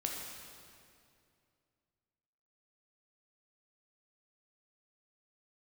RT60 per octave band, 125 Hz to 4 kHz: 2.9, 2.7, 2.5, 2.3, 2.1, 2.0 seconds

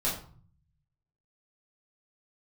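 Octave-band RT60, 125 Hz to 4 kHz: 1.2, 0.85, 0.45, 0.50, 0.35, 0.30 seconds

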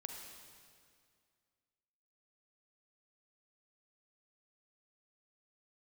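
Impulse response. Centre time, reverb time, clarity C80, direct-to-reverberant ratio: 68 ms, 2.2 s, 4.5 dB, 2.5 dB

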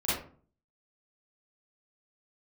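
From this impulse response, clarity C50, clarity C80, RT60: −1.5 dB, 6.5 dB, 0.45 s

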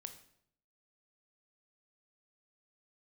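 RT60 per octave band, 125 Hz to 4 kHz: 0.90, 0.80, 0.75, 0.65, 0.60, 0.55 seconds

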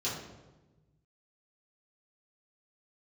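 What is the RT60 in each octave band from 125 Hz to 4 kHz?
2.1, 1.5, 1.3, 1.0, 0.85, 0.75 seconds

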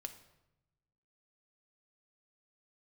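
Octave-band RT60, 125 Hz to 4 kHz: 1.6, 1.3, 0.95, 0.85, 0.75, 0.65 seconds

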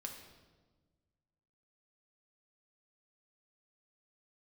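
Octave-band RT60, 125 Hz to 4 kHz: 2.1, 1.8, 1.5, 1.2, 1.0, 1.0 seconds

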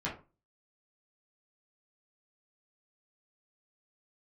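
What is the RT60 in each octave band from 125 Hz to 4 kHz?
0.40, 0.35, 0.30, 0.30, 0.25, 0.20 seconds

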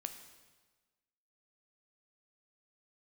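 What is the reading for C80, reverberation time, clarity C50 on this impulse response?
10.5 dB, 1.3 s, 9.0 dB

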